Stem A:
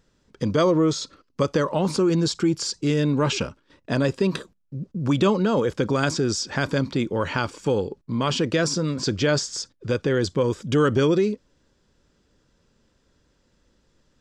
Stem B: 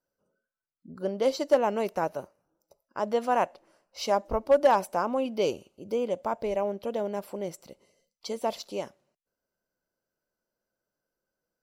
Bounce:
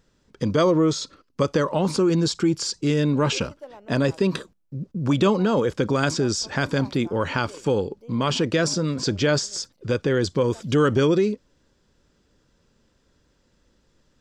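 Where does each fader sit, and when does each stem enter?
+0.5, −19.0 decibels; 0.00, 2.10 seconds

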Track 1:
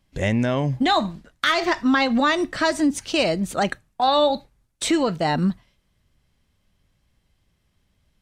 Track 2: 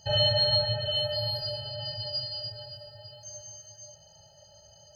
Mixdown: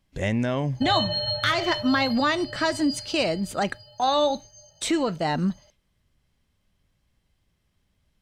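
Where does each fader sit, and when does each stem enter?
−3.5, −3.0 decibels; 0.00, 0.75 seconds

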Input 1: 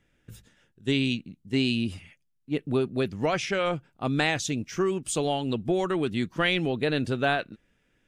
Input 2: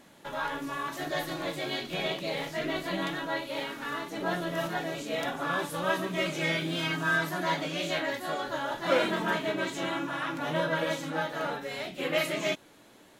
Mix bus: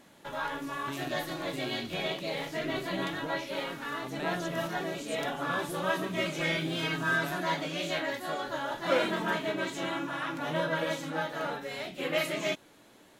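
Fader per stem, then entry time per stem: −16.0, −1.5 decibels; 0.00, 0.00 seconds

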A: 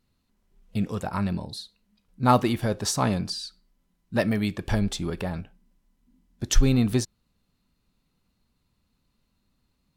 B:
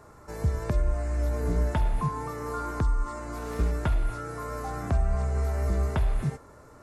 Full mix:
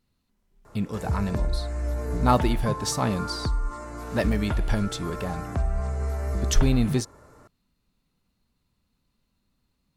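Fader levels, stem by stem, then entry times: −1.5, −1.0 decibels; 0.00, 0.65 seconds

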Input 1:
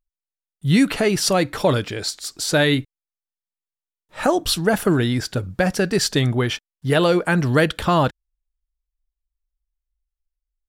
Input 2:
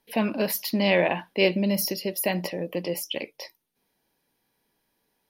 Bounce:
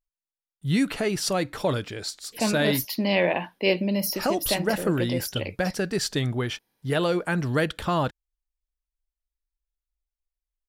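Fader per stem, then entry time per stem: −7.0, −1.0 decibels; 0.00, 2.25 seconds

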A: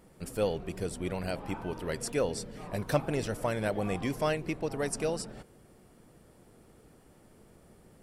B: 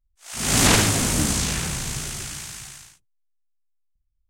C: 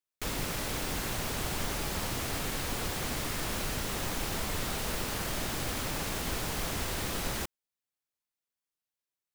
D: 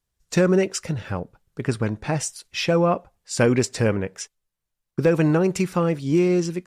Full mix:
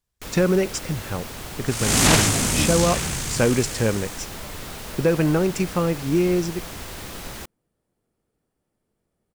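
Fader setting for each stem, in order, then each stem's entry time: −19.0, 0.0, −1.5, −1.0 decibels; 1.50, 1.40, 0.00, 0.00 seconds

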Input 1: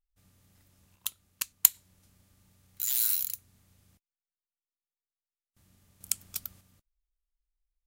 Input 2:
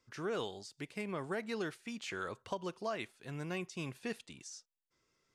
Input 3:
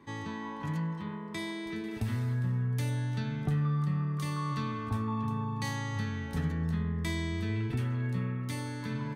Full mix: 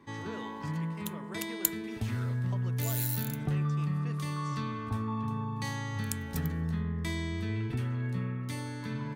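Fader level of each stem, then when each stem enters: −8.0, −7.5, −1.0 decibels; 0.00, 0.00, 0.00 seconds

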